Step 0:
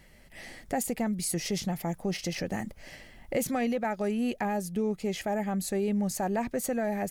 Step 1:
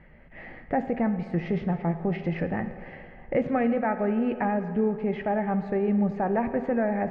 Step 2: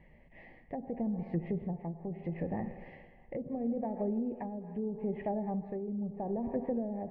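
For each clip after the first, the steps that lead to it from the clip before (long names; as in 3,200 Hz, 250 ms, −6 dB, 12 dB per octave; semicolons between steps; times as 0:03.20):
low-pass filter 2,100 Hz 24 dB per octave; convolution reverb RT60 2.4 s, pre-delay 3 ms, DRR 8 dB; level +4 dB
treble cut that deepens with the level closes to 450 Hz, closed at −21 dBFS; Butterworth band-reject 1,400 Hz, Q 2.1; amplitude tremolo 0.76 Hz, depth 54%; level −6 dB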